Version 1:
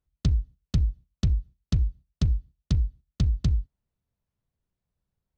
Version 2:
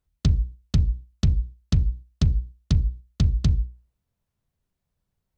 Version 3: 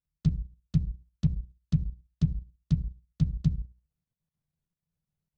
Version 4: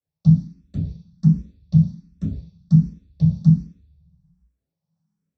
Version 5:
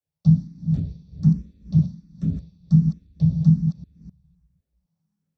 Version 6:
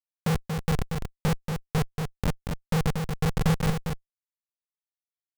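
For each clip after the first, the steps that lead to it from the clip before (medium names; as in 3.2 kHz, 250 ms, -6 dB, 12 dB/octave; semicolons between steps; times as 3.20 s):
hum notches 60/120/180/240/300/360/420/480/540 Hz; trim +4.5 dB
peaking EQ 160 Hz +14.5 dB 0.41 oct; level held to a coarse grid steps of 11 dB; trim -8.5 dB
reverberation RT60 0.50 s, pre-delay 3 ms, DRR -7 dB; barber-pole phaser +1.3 Hz; trim -6.5 dB
chunks repeated in reverse 256 ms, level -7 dB; trim -2 dB
Schmitt trigger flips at -19 dBFS; delay 233 ms -5.5 dB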